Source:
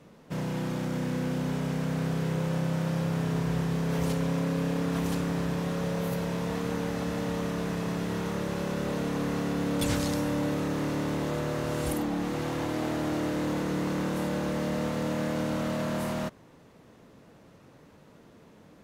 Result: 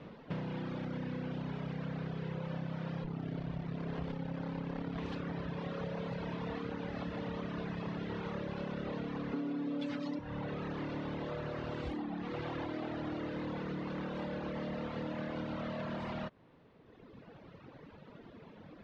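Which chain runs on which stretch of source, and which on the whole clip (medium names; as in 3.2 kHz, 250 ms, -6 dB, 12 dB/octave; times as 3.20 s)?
3.04–4.98 s: treble shelf 5.4 kHz +9.5 dB + sliding maximum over 33 samples
9.33–10.19 s: resonant high-pass 240 Hz, resonance Q 2.4 + comb 7 ms, depth 77%
whole clip: reverb removal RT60 1.8 s; low-pass 4 kHz 24 dB/octave; compression, threshold -41 dBFS; trim +4.5 dB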